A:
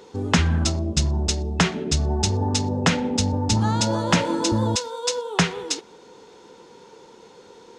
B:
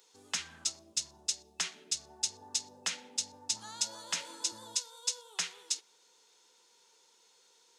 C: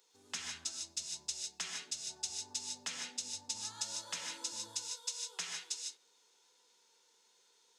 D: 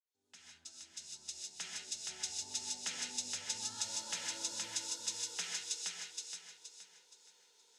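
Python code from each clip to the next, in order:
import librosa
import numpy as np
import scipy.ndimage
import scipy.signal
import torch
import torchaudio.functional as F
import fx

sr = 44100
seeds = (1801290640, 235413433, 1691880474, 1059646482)

y1 = np.diff(x, prepend=0.0)
y1 = y1 * 10.0 ** (-4.5 / 20.0)
y2 = fx.rev_gated(y1, sr, seeds[0], gate_ms=180, shape='rising', drr_db=0.5)
y2 = y2 * 10.0 ** (-7.0 / 20.0)
y3 = fx.fade_in_head(y2, sr, length_s=2.5)
y3 = fx.notch(y3, sr, hz=1100.0, q=5.3)
y3 = fx.echo_feedback(y3, sr, ms=471, feedback_pct=36, wet_db=-4)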